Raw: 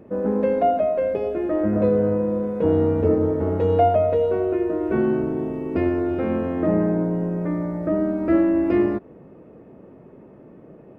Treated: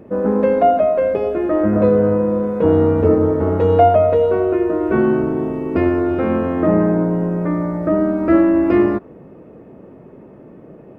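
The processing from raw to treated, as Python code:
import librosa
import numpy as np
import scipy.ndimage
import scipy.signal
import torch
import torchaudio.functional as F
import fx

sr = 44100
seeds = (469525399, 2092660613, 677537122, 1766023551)

y = fx.dynamic_eq(x, sr, hz=1200.0, q=1.8, threshold_db=-43.0, ratio=4.0, max_db=5)
y = y * 10.0 ** (5.0 / 20.0)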